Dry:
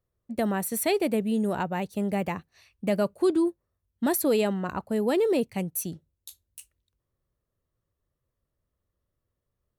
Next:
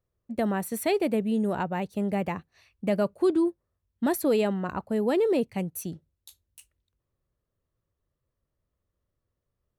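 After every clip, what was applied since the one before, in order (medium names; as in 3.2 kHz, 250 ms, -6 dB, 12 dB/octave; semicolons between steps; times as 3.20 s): treble shelf 4.3 kHz -7 dB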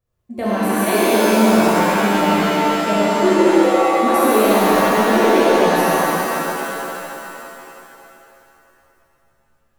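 thinning echo 70 ms, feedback 84%, high-pass 1.1 kHz, level -6 dB; pitch-shifted reverb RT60 3 s, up +7 st, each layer -2 dB, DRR -9 dB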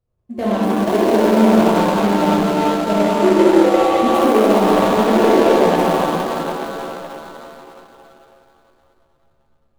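median filter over 25 samples; trim +2 dB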